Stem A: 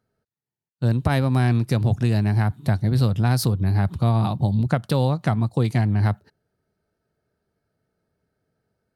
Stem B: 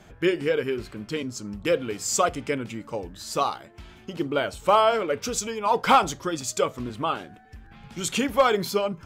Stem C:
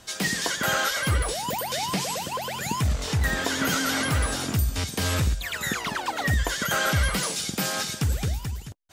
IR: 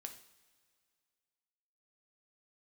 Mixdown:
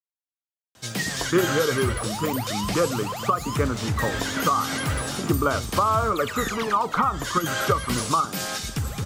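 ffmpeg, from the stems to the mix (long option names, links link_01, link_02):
-filter_complex "[0:a]acrusher=bits=4:mix=0:aa=0.000001,volume=-18.5dB[link_01];[1:a]lowpass=frequency=1200:width_type=q:width=8.1,lowshelf=frequency=240:gain=9,crystalizer=i=4:c=0,adelay=1100,volume=-1dB[link_02];[2:a]highpass=frequency=72:width=0.5412,highpass=frequency=72:width=1.3066,adelay=750,volume=-1.5dB[link_03];[link_02][link_03]amix=inputs=2:normalize=0,alimiter=limit=-6dB:level=0:latency=1:release=195,volume=0dB[link_04];[link_01][link_04]amix=inputs=2:normalize=0,acrossover=split=360|3000[link_05][link_06][link_07];[link_06]acompressor=threshold=-22dB:ratio=3[link_08];[link_05][link_08][link_07]amix=inputs=3:normalize=0"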